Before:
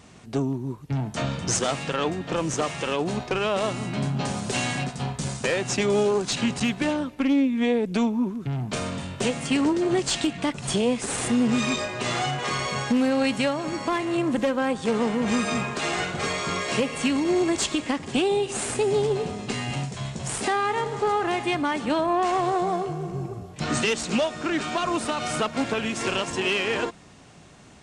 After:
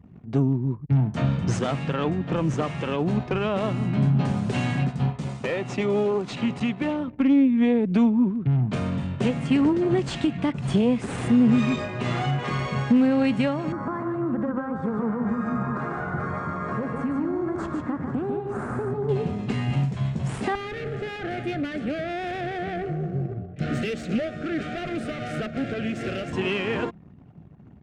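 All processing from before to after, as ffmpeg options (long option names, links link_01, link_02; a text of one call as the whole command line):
ffmpeg -i in.wav -filter_complex "[0:a]asettb=1/sr,asplit=3[link_01][link_02][link_03];[link_01]atrim=end=5.104[link_04];[link_02]atrim=start=5.1:end=7.08,asetpts=PTS-STARTPTS,afade=type=in:duration=0.004:curve=qsin,afade=type=out:start_time=1.976:duration=0.004:curve=qsin,bass=frequency=250:gain=-8,treble=frequency=4000:gain=-3,bandreject=frequency=1600:width=7.7,asoftclip=type=hard:threshold=-17.5dB[link_05];[link_03]atrim=start=7.076[link_06];[link_04][link_05]acrossfade=duration=0.004:curve1=hsin:curve2=qsin[link_07];[link_07][link_06]acrossfade=duration=0.004:curve1=qsin:curve2=hsin,asettb=1/sr,asplit=3[link_08][link_09][link_10];[link_08]atrim=end=13.724[link_11];[link_09]atrim=start=13.72:end=19.09,asetpts=PTS-STARTPTS,afade=type=in:duration=0.004:curve=qsin,afade=type=out:start_time=5.366:duration=0.004:curve=qsin,highshelf=frequency=2000:width_type=q:width=3:gain=-12.5,acompressor=threshold=-26dB:ratio=6:attack=3.2:release=140:knee=1:detection=peak,aecho=1:1:147:0.562,atrim=end_sample=236817[link_12];[link_10]atrim=start=19.086[link_13];[link_11][link_12]acrossfade=duration=0.004:curve1=hsin:curve2=qsin[link_14];[link_14][link_13]acrossfade=duration=0.004:curve1=qsin:curve2=hsin,asettb=1/sr,asplit=3[link_15][link_16][link_17];[link_15]atrim=end=20.554[link_18];[link_16]atrim=start=20.55:end=26.33,asetpts=PTS-STARTPTS,afade=type=in:duration=0.004:curve=qsin,afade=type=out:start_time=5.776:duration=0.004:curve=qsin,equalizer=frequency=850:width_type=o:width=1.3:gain=10.5,aeval=exprs='(tanh(12.6*val(0)+0.55)-tanh(0.55))/12.6':channel_layout=same,asuperstop=centerf=960:order=4:qfactor=1.3[link_19];[link_17]atrim=start=26.326[link_20];[link_18][link_19]acrossfade=duration=0.004:curve1=hsin:curve2=qsin[link_21];[link_21][link_20]acrossfade=duration=0.004:curve1=qsin:curve2=hsin,anlmdn=0.0158,highpass=frequency=170:poles=1,bass=frequency=250:gain=15,treble=frequency=4000:gain=-14,volume=-2dB" out.wav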